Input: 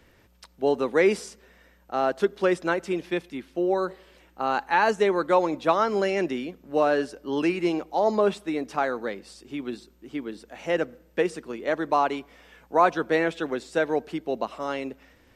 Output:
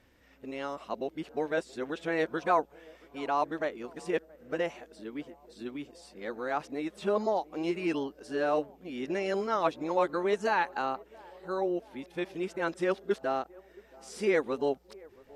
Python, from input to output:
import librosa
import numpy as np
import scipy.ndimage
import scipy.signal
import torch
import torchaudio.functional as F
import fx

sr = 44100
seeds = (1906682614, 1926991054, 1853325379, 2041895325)

y = x[::-1].copy()
y = fx.echo_banded(y, sr, ms=675, feedback_pct=69, hz=560.0, wet_db=-23)
y = y * 10.0 ** (-6.5 / 20.0)